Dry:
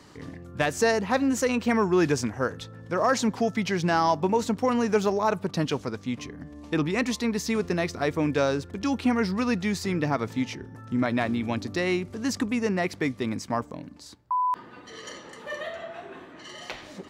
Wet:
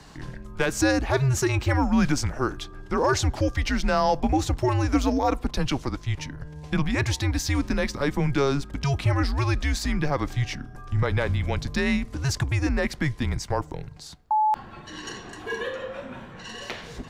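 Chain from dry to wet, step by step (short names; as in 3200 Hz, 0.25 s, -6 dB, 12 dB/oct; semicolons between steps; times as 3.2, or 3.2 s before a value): in parallel at 0 dB: limiter -22 dBFS, peak gain reduction 9.5 dB; on the sum: frequency shift -140 Hz; gain -2 dB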